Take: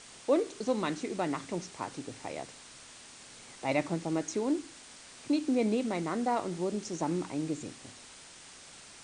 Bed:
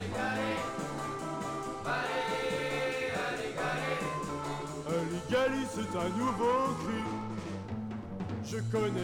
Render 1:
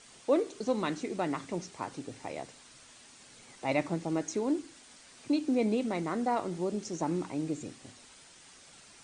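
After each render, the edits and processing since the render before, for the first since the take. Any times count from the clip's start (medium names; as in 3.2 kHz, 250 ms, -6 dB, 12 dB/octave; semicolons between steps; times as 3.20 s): noise reduction 6 dB, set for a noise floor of -52 dBFS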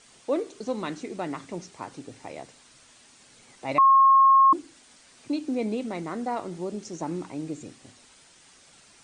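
3.78–4.53 s: bleep 1.08 kHz -13 dBFS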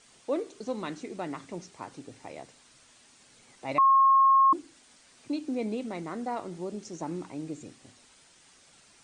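trim -3.5 dB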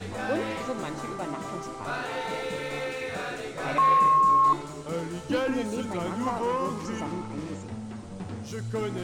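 add bed +0.5 dB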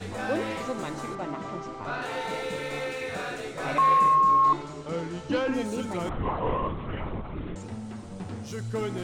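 1.15–2.02 s: distance through air 110 m; 4.15–5.54 s: low-pass 6.1 kHz; 6.09–7.56 s: LPC vocoder at 8 kHz whisper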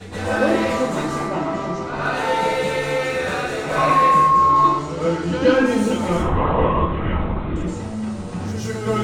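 plate-style reverb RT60 0.58 s, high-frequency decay 0.7×, pre-delay 105 ms, DRR -10 dB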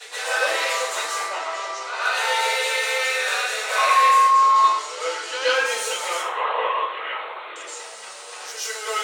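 elliptic high-pass 450 Hz, stop band 80 dB; tilt shelf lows -10 dB, about 1.2 kHz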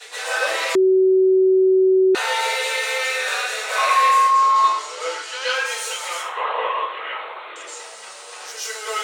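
0.75–2.15 s: bleep 377 Hz -11.5 dBFS; 5.22–6.37 s: high-pass 850 Hz 6 dB/octave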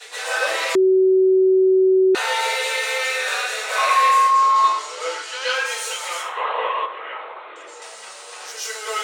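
6.86–7.82 s: treble shelf 2.6 kHz -11.5 dB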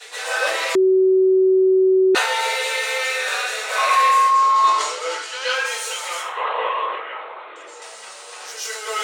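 decay stretcher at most 53 dB/s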